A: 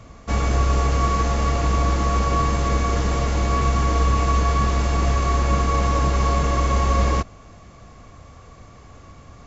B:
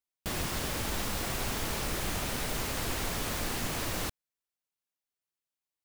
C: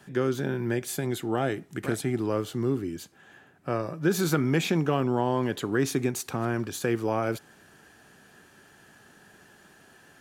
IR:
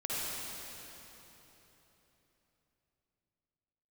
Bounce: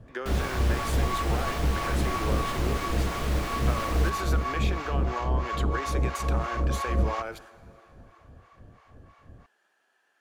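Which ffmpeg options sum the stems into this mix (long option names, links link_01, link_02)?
-filter_complex "[0:a]adynamicsmooth=sensitivity=3.5:basefreq=4000,acrossover=split=710[link_01][link_02];[link_01]aeval=exprs='val(0)*(1-1/2+1/2*cos(2*PI*3*n/s))':channel_layout=same[link_03];[link_02]aeval=exprs='val(0)*(1-1/2-1/2*cos(2*PI*3*n/s))':channel_layout=same[link_04];[link_03][link_04]amix=inputs=2:normalize=0,volume=-3.5dB[link_05];[1:a]volume=-2dB,asplit=2[link_06][link_07];[link_07]volume=-9dB[link_08];[2:a]agate=range=-16dB:threshold=-45dB:ratio=16:detection=peak,highpass=620,acompressor=threshold=-34dB:ratio=6,volume=3dB,asplit=2[link_09][link_10];[link_10]volume=-21.5dB[link_11];[3:a]atrim=start_sample=2205[link_12];[link_08][link_11]amix=inputs=2:normalize=0[link_13];[link_13][link_12]afir=irnorm=-1:irlink=0[link_14];[link_05][link_06][link_09][link_14]amix=inputs=4:normalize=0,highshelf=frequency=5600:gain=-10.5"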